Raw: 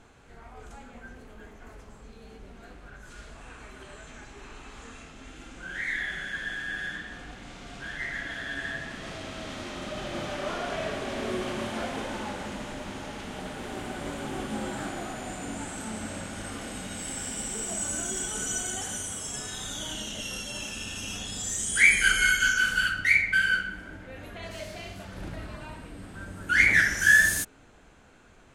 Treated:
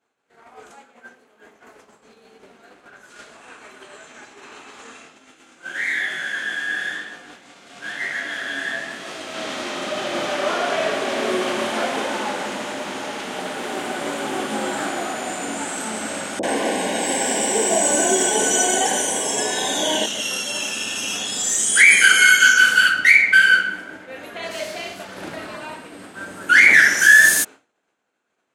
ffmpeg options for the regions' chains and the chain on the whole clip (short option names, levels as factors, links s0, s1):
-filter_complex "[0:a]asettb=1/sr,asplit=3[s0][s1][s2];[s0]atrim=end=0.734[s3];[s1]atrim=start=0.73:end=1.43,asetpts=PTS-STARTPTS,afade=t=in:d=0.004:c=qsin,afade=t=out:st=0.696:d=0.004:c=qsin,lowshelf=f=85:g=-10.5,bandreject=f=50:t=h:w=6,bandreject=f=100:t=h:w=6,bandreject=f=150:t=h:w=6,bandreject=f=200:t=h:w=6,bandreject=f=250:t=h:w=6,bandreject=f=300:t=h:w=6,bandreject=f=350:t=h:w=6,bandreject=f=400:t=h:w=6[s4];[s2]atrim=start=1.426[s5];[s3][s4]acrossfade=d=0.004:c1=hsin:c2=qsin[s6];[s6][s5]acrossfade=d=0.004:c1=qsin:c2=hsin,asettb=1/sr,asplit=3[s7][s8][s9];[s7]atrim=end=5.184[s10];[s8]atrim=start=5.18:end=9.34,asetpts=PTS-STARTPTS,afade=t=in:d=0.004:c=qsin,afade=t=out:st=4.156:d=0.004:c=qsin,flanger=delay=19:depth=7:speed=1,highshelf=f=9500:g=7[s11];[s9]atrim=start=9.336[s12];[s10][s11]acrossfade=d=0.004:c1=hsin:c2=qsin[s13];[s13][s12]acrossfade=d=0.004:c1=qsin:c2=hsin,asettb=1/sr,asplit=3[s14][s15][s16];[s14]atrim=end=16.394[s17];[s15]atrim=start=16.39:end=20.06,asetpts=PTS-STARTPTS,afade=t=in:d=0.004:c=qsin,afade=t=out:st=3.666:d=0.004:c=qsin,asuperstop=centerf=1300:order=4:qfactor=2.9,equalizer=f=610:t=o:w=2.8:g=13.5,acrossover=split=650[s18][s19];[s19]adelay=40[s20];[s18][s20]amix=inputs=2:normalize=0,atrim=end_sample=161847[s21];[s16]atrim=start=20.056[s22];[s17][s21]acrossfade=d=0.004:c1=hsin:c2=qsin[s23];[s23][s22]acrossfade=d=0.004:c1=qsin:c2=hsin,agate=range=0.0224:threshold=0.0112:ratio=3:detection=peak,highpass=310,alimiter=level_in=3.98:limit=0.891:release=50:level=0:latency=1,volume=0.891"